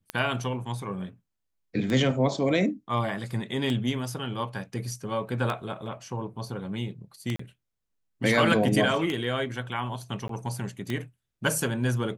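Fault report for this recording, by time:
scratch tick 33 1/3 rpm −16 dBFS
0:07.36–0:07.39: drop-out 34 ms
0:10.28–0:10.29: drop-out 13 ms

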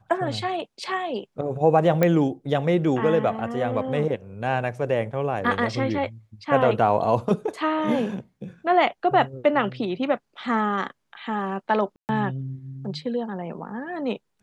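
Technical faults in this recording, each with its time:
0:02.03: click −8 dBFS
0:11.96–0:12.09: drop-out 129 ms

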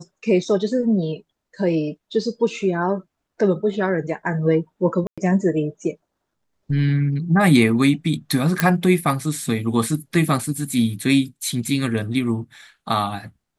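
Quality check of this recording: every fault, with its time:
0:05.07–0:05.18: drop-out 106 ms
0:08.60: click −2 dBFS

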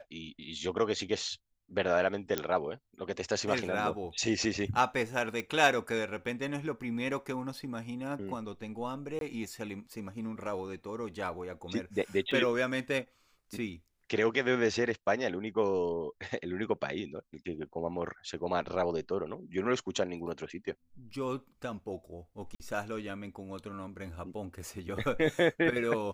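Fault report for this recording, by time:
0:02.38: click −13 dBFS
0:05.40: click −21 dBFS
0:09.19–0:09.21: drop-out 22 ms
0:12.31: drop-out 4.5 ms
0:22.55–0:22.60: drop-out 49 ms

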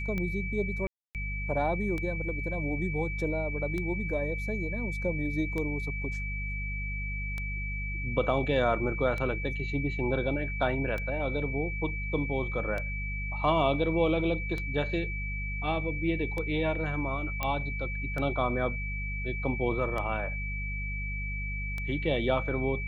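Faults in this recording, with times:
mains hum 50 Hz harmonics 4 −35 dBFS
scratch tick 33 1/3 rpm −21 dBFS
whistle 2,300 Hz −36 dBFS
0:00.87–0:01.15: drop-out 278 ms
0:17.43: click −15 dBFS

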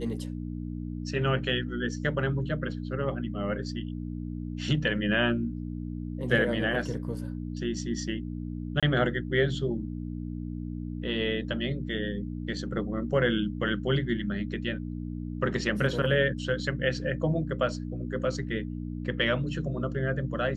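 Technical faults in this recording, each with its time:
mains hum 60 Hz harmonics 5 −35 dBFS
0:08.80–0:08.83: drop-out 26 ms

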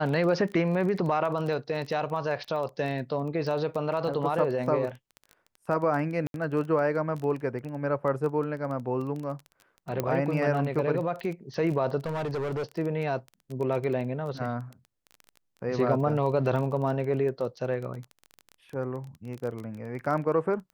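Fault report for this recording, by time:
surface crackle 17 per second −33 dBFS
0:06.27–0:06.34: drop-out 72 ms
0:10.00: click −14 dBFS
0:12.06–0:12.64: clipping −27.5 dBFS

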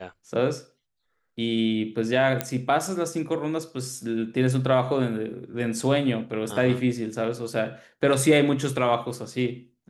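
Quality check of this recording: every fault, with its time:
0:02.41: click −8 dBFS

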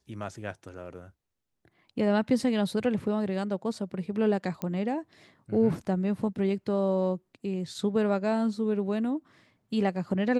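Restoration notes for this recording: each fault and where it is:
0:04.62: click −18 dBFS

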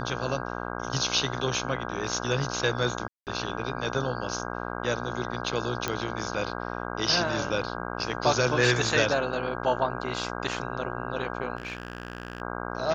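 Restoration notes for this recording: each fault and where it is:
mains buzz 60 Hz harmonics 27 −34 dBFS
0:03.08–0:03.27: drop-out 188 ms
0:05.88: click −12 dBFS
0:11.57–0:12.42: clipping −29 dBFS

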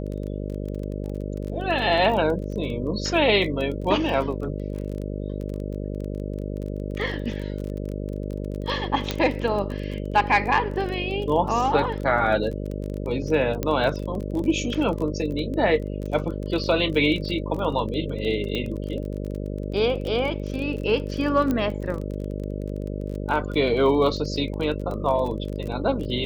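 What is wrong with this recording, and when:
mains buzz 50 Hz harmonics 12 −30 dBFS
surface crackle 24 per second −30 dBFS
0:09.11: click −10 dBFS
0:13.63: click −11 dBFS
0:18.55: click −16 dBFS
0:21.51: click −13 dBFS

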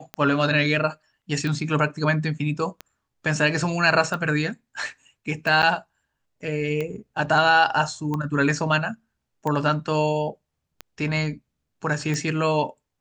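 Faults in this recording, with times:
scratch tick 45 rpm −16 dBFS
0:05.62–0:05.63: drop-out 8.7 ms

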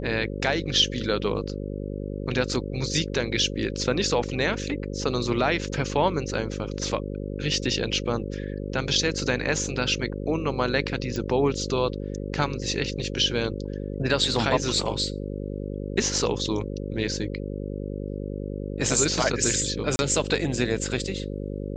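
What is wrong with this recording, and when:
mains buzz 50 Hz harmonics 11 −32 dBFS
0:11.16: click −18 dBFS
0:19.96–0:19.99: drop-out 30 ms

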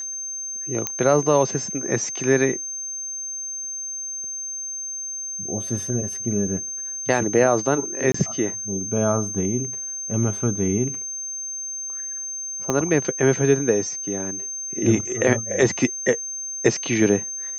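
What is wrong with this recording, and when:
whistle 6,300 Hz −28 dBFS
0:00.87: click −7 dBFS
0:08.12–0:08.14: drop-out 24 ms
0:12.70: click −9 dBFS

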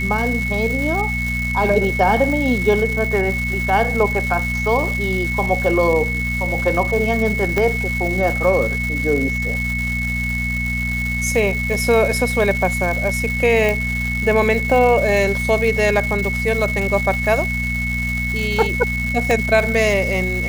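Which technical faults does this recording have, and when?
surface crackle 500 per second −24 dBFS
mains hum 60 Hz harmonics 4 −24 dBFS
whistle 2,200 Hz −22 dBFS
0:07.58: click −6 dBFS
0:13.69: click
0:19.31: click

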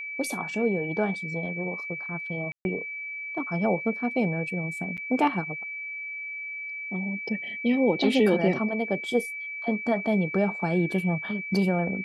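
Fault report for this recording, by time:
whistle 2,300 Hz −33 dBFS
0:02.52–0:02.65: drop-out 131 ms
0:04.97–0:04.98: drop-out 7.5 ms

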